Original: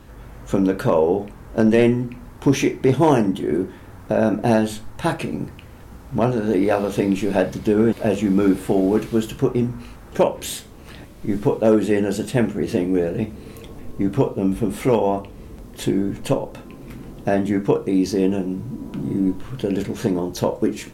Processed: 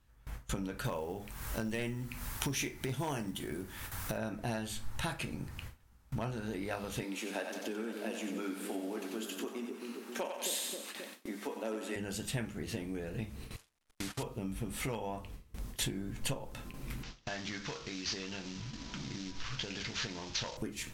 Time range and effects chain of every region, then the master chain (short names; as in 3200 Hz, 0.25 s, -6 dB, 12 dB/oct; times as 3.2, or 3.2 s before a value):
0.84–4.18 high shelf 9300 Hz +9 dB + companded quantiser 8-bit + mismatched tape noise reduction encoder only
7.03–11.96 steep high-pass 220 Hz 48 dB/oct + split-band echo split 500 Hz, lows 0.266 s, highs 92 ms, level -6 dB
13.56–14.23 delta modulation 64 kbps, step -25.5 dBFS + gate -26 dBFS, range -21 dB + low shelf 290 Hz -10 dB
17.03–20.57 CVSD 32 kbps + tilt shelf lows -7 dB, about 830 Hz + compressor 2:1, threshold -30 dBFS
whole clip: gate with hold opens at -28 dBFS; compressor 2.5:1, threshold -31 dBFS; bell 380 Hz -13 dB 2.8 oct; gain +1 dB